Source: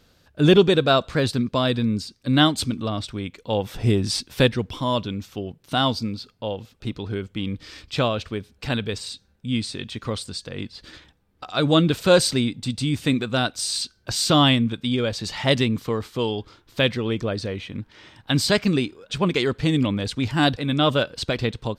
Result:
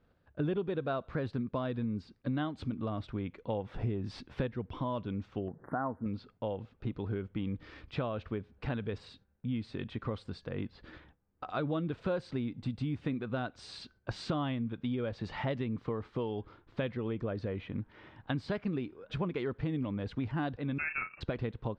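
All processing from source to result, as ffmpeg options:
ffmpeg -i in.wav -filter_complex "[0:a]asettb=1/sr,asplit=3[link_01][link_02][link_03];[link_01]atrim=end=5.484[link_04];[link_02]atrim=start=5.48:end=6.06,asetpts=PTS-STARTPTS,afade=type=in:duration=0.004:curve=qsin,afade=type=out:start_time=0.576:duration=0.004:curve=qsin,acompressor=mode=upward:threshold=-24dB:ratio=2.5:attack=3.2:release=140:knee=2.83:detection=peak,asuperstop=centerf=4500:order=20:qfactor=0.58,lowshelf=frequency=150:gain=-11.5[link_05];[link_03]atrim=start=6.056[link_06];[link_04][link_05]acrossfade=duration=0.004:curve1=hsin:curve2=qsin[link_07];[link_07][link_06]acrossfade=duration=0.004:curve1=qsin:curve2=hsin,asettb=1/sr,asplit=3[link_08][link_09][link_10];[link_08]atrim=end=20.784[link_11];[link_09]atrim=start=20.78:end=21.21,asetpts=PTS-STARTPTS,afade=type=in:duration=0.004:curve=qsin,afade=type=out:start_time=0.426:duration=0.004:curve=qsin,asplit=2[link_12][link_13];[link_13]adelay=35,volume=-9.5dB[link_14];[link_12][link_14]amix=inputs=2:normalize=0,atrim=end_sample=18963,lowpass=frequency=2400:width_type=q:width=0.5098,lowpass=frequency=2400:width_type=q:width=0.6013,lowpass=frequency=2400:width_type=q:width=0.9,lowpass=frequency=2400:width_type=q:width=2.563,afreqshift=-2800[link_15];[link_10]atrim=start=21.206[link_16];[link_11][link_15]acrossfade=duration=0.004:curve1=hsin:curve2=qsin[link_17];[link_17][link_16]acrossfade=duration=0.004:curve1=qsin:curve2=hsin,lowpass=1700,acompressor=threshold=-28dB:ratio=5,agate=range=-8dB:threshold=-58dB:ratio=16:detection=peak,volume=-3.5dB" out.wav

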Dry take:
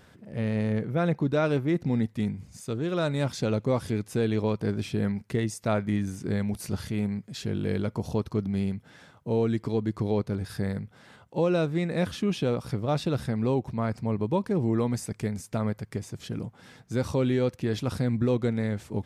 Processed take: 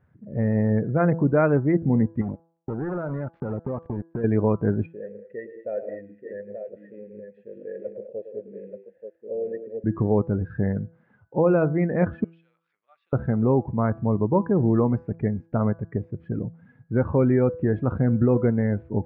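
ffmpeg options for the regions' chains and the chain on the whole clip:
ffmpeg -i in.wav -filter_complex "[0:a]asettb=1/sr,asplit=3[link_01][link_02][link_03];[link_01]atrim=end=2.214[link_04];[link_02]atrim=start=2.21:end=4.24,asetpts=PTS-STARTPTS,afade=type=in:duration=0.004:curve=qsin,afade=type=out:start_time=2.026:duration=0.004:curve=qsin,acrusher=bits=4:mix=0:aa=0.5,acompressor=threshold=-30dB:ratio=8:attack=3.2:release=140:knee=1:detection=peak[link_05];[link_03]atrim=start=4.236[link_06];[link_04][link_05]acrossfade=duration=0.004:curve1=hsin:curve2=qsin[link_07];[link_07][link_06]acrossfade=duration=0.004:curve1=qsin:curve2=hsin,asettb=1/sr,asplit=3[link_08][link_09][link_10];[link_08]atrim=end=4.864[link_11];[link_09]atrim=start=4.86:end=9.84,asetpts=PTS-STARTPTS,afade=type=in:duration=0.004:curve=qsin,afade=type=out:start_time=4.976:duration=0.004:curve=qsin,asplit=3[link_12][link_13][link_14];[link_12]bandpass=frequency=530:width_type=q:width=8,volume=0dB[link_15];[link_13]bandpass=frequency=1840:width_type=q:width=8,volume=-6dB[link_16];[link_14]bandpass=frequency=2480:width_type=q:width=8,volume=-9dB[link_17];[link_15][link_16][link_17]amix=inputs=3:normalize=0,highshelf=frequency=3200:gain=9,aecho=1:1:108|167|205|882:0.355|0.251|0.299|0.501,atrim=end_sample=219618[link_18];[link_10]atrim=start=9.836[link_19];[link_11][link_18]acrossfade=duration=0.004:curve1=hsin:curve2=qsin[link_20];[link_20][link_19]acrossfade=duration=0.004:curve1=qsin:curve2=hsin,asettb=1/sr,asplit=3[link_21][link_22][link_23];[link_21]atrim=end=12.244[link_24];[link_22]atrim=start=12.24:end=13.13,asetpts=PTS-STARTPTS,afade=type=in:duration=0.004:curve=qsin,afade=type=out:start_time=0.886:duration=0.004:curve=qsin,aemphasis=mode=reproduction:type=50fm,acompressor=mode=upward:threshold=-30dB:ratio=2.5:attack=3.2:release=140:knee=2.83:detection=peak,asuperpass=centerf=5700:order=4:qfactor=0.81[link_25];[link_23]atrim=start=13.126[link_26];[link_24][link_25]acrossfade=duration=0.004:curve1=hsin:curve2=qsin[link_27];[link_27][link_26]acrossfade=duration=0.004:curve1=qsin:curve2=hsin,lowpass=frequency=2000:width=0.5412,lowpass=frequency=2000:width=1.3066,afftdn=noise_reduction=19:noise_floor=-41,bandreject=frequency=165.8:width_type=h:width=4,bandreject=frequency=331.6:width_type=h:width=4,bandreject=frequency=497.4:width_type=h:width=4,bandreject=frequency=663.2:width_type=h:width=4,bandreject=frequency=829:width_type=h:width=4,bandreject=frequency=994.8:width_type=h:width=4,bandreject=frequency=1160.6:width_type=h:width=4,bandreject=frequency=1326.4:width_type=h:width=4,bandreject=frequency=1492.2:width_type=h:width=4,bandreject=frequency=1658:width_type=h:width=4,volume=5.5dB" out.wav

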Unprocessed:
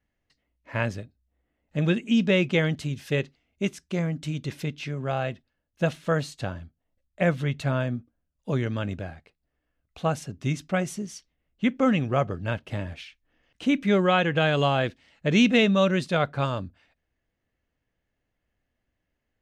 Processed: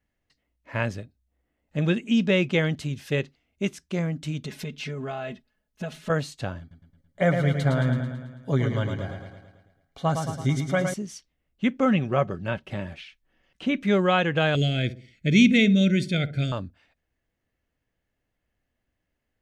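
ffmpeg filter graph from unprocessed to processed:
ffmpeg -i in.wav -filter_complex "[0:a]asettb=1/sr,asplit=3[link_01][link_02][link_03];[link_01]atrim=end=4.434[link_04];[link_02]atrim=start=4.43:end=6.1,asetpts=PTS-STARTPTS,afade=type=in:duration=0.004:curve=qsin,afade=type=out:start_time=1.666:duration=0.004:curve=qsin,aecho=1:1:4.7:0.94,atrim=end_sample=73647,acompressor=threshold=-29dB:ratio=5:attack=3.2:release=140:knee=1:detection=peak[link_05];[link_03]atrim=start=6.096[link_06];[link_04][link_05]acrossfade=duration=0.004:curve1=hsin:curve2=qsin[link_07];[link_07][link_06]acrossfade=duration=0.004:curve1=qsin:curve2=hsin,asettb=1/sr,asplit=3[link_08][link_09][link_10];[link_08]atrim=end=6.604[link_11];[link_09]atrim=start=6.6:end=10.94,asetpts=PTS-STARTPTS,afade=type=in:duration=0.004:curve=qsin,afade=type=out:start_time=4.336:duration=0.004:curve=qsin,asuperstop=centerf=2600:order=8:qfactor=6.6,aecho=1:1:7.3:0.49,atrim=end_sample=191394,aecho=1:1:110|220|330|440|550|660|770:0.501|0.281|0.157|0.088|0.0493|0.0276|0.0155,atrim=end_sample=191394[link_12];[link_10]atrim=start=10.936[link_13];[link_11][link_12]acrossfade=duration=0.004:curve1=hsin:curve2=qsin[link_14];[link_14][link_13]acrossfade=duration=0.004:curve1=qsin:curve2=hsin,asettb=1/sr,asplit=3[link_15][link_16][link_17];[link_15]atrim=end=11.854[link_18];[link_16]atrim=start=11.85:end=13.83,asetpts=PTS-STARTPTS,afade=type=in:duration=0.004:curve=qsin,afade=type=out:start_time=1.976:duration=0.004:curve=qsin,acrossover=split=4300[link_19][link_20];[link_20]acompressor=threshold=-59dB:ratio=4:attack=1:release=60[link_21];[link_19][link_21]amix=inputs=2:normalize=0,aecho=1:1:5.3:0.36,atrim=end_sample=87318[link_22];[link_17]atrim=start=13.826[link_23];[link_18][link_22]acrossfade=duration=0.004:curve1=hsin:curve2=qsin[link_24];[link_24][link_23]acrossfade=duration=0.004:curve1=qsin:curve2=hsin,asettb=1/sr,asplit=3[link_25][link_26][link_27];[link_25]atrim=end=14.554[link_28];[link_26]atrim=start=14.55:end=16.52,asetpts=PTS-STARTPTS,afade=type=in:duration=0.004:curve=qsin,afade=type=out:start_time=1.966:duration=0.004:curve=qsin,asuperstop=centerf=1000:order=8:qfactor=1.1,aecho=1:1:0.9:0.66,atrim=end_sample=86877,asplit=2[link_29][link_30];[link_30]adelay=62,lowpass=frequency=940:poles=1,volume=-13dB,asplit=2[link_31][link_32];[link_32]adelay=62,lowpass=frequency=940:poles=1,volume=0.45,asplit=2[link_33][link_34];[link_34]adelay=62,lowpass=frequency=940:poles=1,volume=0.45,asplit=2[link_35][link_36];[link_36]adelay=62,lowpass=frequency=940:poles=1,volume=0.45[link_37];[link_29][link_31][link_33][link_35][link_37]amix=inputs=5:normalize=0,atrim=end_sample=86877[link_38];[link_27]atrim=start=16.516[link_39];[link_28][link_38]acrossfade=duration=0.004:curve1=hsin:curve2=qsin[link_40];[link_40][link_39]acrossfade=duration=0.004:curve1=qsin:curve2=hsin" out.wav

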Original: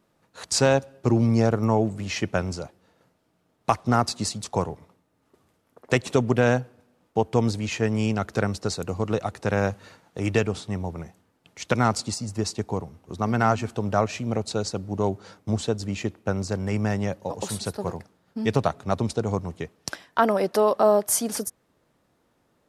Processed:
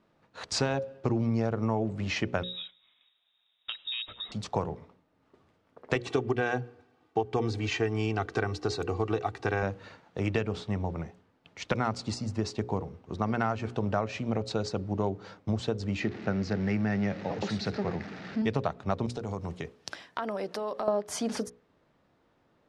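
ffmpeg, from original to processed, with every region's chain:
ffmpeg -i in.wav -filter_complex "[0:a]asettb=1/sr,asplit=3[link_01][link_02][link_03];[link_01]atrim=end=2.434[link_04];[link_02]atrim=start=2.43:end=4.32,asetpts=PTS-STARTPTS,afade=type=in:duration=0.004:curve=qsin,afade=type=out:start_time=1.886:duration=0.004:curve=qsin,equalizer=frequency=870:width=0.65:gain=-7,lowpass=frequency=3300:width_type=q:width=0.5098,lowpass=frequency=3300:width_type=q:width=0.6013,lowpass=frequency=3300:width_type=q:width=0.9,lowpass=frequency=3300:width_type=q:width=2.563,afreqshift=-3900,acompressor=threshold=-33dB:ratio=3:attack=3.2:release=140:knee=1:detection=peak[link_05];[link_03]atrim=start=4.316[link_06];[link_04][link_05]acrossfade=duration=0.004:curve1=hsin:curve2=qsin[link_07];[link_07][link_06]acrossfade=duration=0.004:curve1=qsin:curve2=hsin,asettb=1/sr,asplit=3[link_08][link_09][link_10];[link_08]atrim=end=5.954[link_11];[link_09]atrim=start=5.95:end=9.63,asetpts=PTS-STARTPTS,afade=type=in:duration=0.004:curve=qsin,afade=type=out:start_time=3.676:duration=0.004:curve=qsin,highpass=89,equalizer=frequency=550:width_type=o:width=0.34:gain=-5,aecho=1:1:2.6:0.66,atrim=end_sample=162288[link_12];[link_10]atrim=start=9.626[link_13];[link_11][link_12]acrossfade=duration=0.004:curve1=hsin:curve2=qsin[link_14];[link_14][link_13]acrossfade=duration=0.004:curve1=qsin:curve2=hsin,asettb=1/sr,asplit=3[link_15][link_16][link_17];[link_15]atrim=end=16.004[link_18];[link_16]atrim=start=16:end=18.42,asetpts=PTS-STARTPTS,afade=type=in:duration=0.004:curve=qsin,afade=type=out:start_time=2.416:duration=0.004:curve=qsin,aeval=exprs='val(0)+0.5*0.0178*sgn(val(0))':channel_layout=same,highpass=110,equalizer=frequency=200:width_type=q:width=4:gain=3,equalizer=frequency=540:width_type=q:width=4:gain=-5,equalizer=frequency=1000:width_type=q:width=4:gain=-9,equalizer=frequency=1900:width_type=q:width=4:gain=4,equalizer=frequency=3200:width_type=q:width=4:gain=-5,lowpass=frequency=5800:width=0.5412,lowpass=frequency=5800:width=1.3066[link_19];[link_17]atrim=start=18.416[link_20];[link_18][link_19]acrossfade=duration=0.004:curve1=hsin:curve2=qsin[link_21];[link_21][link_20]acrossfade=duration=0.004:curve1=qsin:curve2=hsin,asettb=1/sr,asplit=3[link_22][link_23][link_24];[link_22]atrim=end=19.064[link_25];[link_23]atrim=start=19.06:end=20.88,asetpts=PTS-STARTPTS,afade=type=in:duration=0.004:curve=qsin,afade=type=out:start_time=1.816:duration=0.004:curve=qsin,highpass=56,aemphasis=mode=production:type=50kf,acompressor=threshold=-30dB:ratio=5:attack=3.2:release=140:knee=1:detection=peak[link_26];[link_24]atrim=start=20.876[link_27];[link_25][link_26]acrossfade=duration=0.004:curve1=hsin:curve2=qsin[link_28];[link_28][link_27]acrossfade=duration=0.004:curve1=qsin:curve2=hsin,lowpass=4100,bandreject=frequency=60:width_type=h:width=6,bandreject=frequency=120:width_type=h:width=6,bandreject=frequency=180:width_type=h:width=6,bandreject=frequency=240:width_type=h:width=6,bandreject=frequency=300:width_type=h:width=6,bandreject=frequency=360:width_type=h:width=6,bandreject=frequency=420:width_type=h:width=6,bandreject=frequency=480:width_type=h:width=6,bandreject=frequency=540:width_type=h:width=6,acompressor=threshold=-25dB:ratio=4" out.wav

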